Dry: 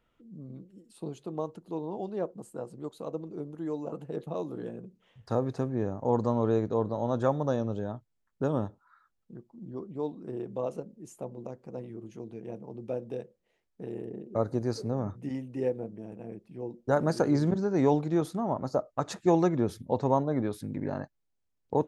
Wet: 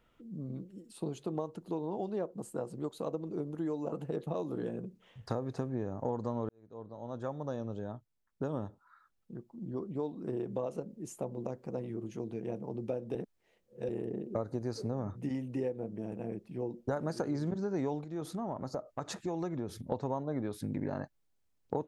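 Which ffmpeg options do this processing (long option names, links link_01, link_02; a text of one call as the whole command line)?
ffmpeg -i in.wav -filter_complex "[0:a]asettb=1/sr,asplit=3[link_01][link_02][link_03];[link_01]atrim=end=18.044[link_04];[link_02]atrim=start=18.04:end=19.92,asetpts=PTS-STARTPTS,afade=type=in:duration=0.004:curve=qsin,afade=type=out:start_time=1.876:duration=0.004:curve=qsin,acompressor=threshold=-44dB:ratio=2:attack=3.2:release=140:knee=1:detection=peak[link_05];[link_03]atrim=start=19.916[link_06];[link_04][link_05]acrossfade=duration=0.004:curve1=hsin:curve2=qsin[link_07];[link_07][link_06]acrossfade=duration=0.004:curve1=qsin:curve2=hsin,asplit=4[link_08][link_09][link_10][link_11];[link_08]atrim=end=6.49,asetpts=PTS-STARTPTS,afade=type=out:start_time=6.486:duration=0.004:curve=hsin[link_12];[link_09]atrim=start=6.49:end=13.152,asetpts=PTS-STARTPTS,afade=type=in:duration=3.75[link_13];[link_10]atrim=start=13.148:end=13.892,asetpts=PTS-STARTPTS,areverse[link_14];[link_11]atrim=start=13.888[link_15];[link_12][link_13]concat=n=2:v=0:a=1[link_16];[link_16][link_14]acrossfade=duration=0.004:curve1=hsin:curve2=hsin[link_17];[link_17][link_15]acrossfade=duration=0.004:curve1=hsin:curve2=hsin,acompressor=threshold=-35dB:ratio=6,volume=3.5dB" out.wav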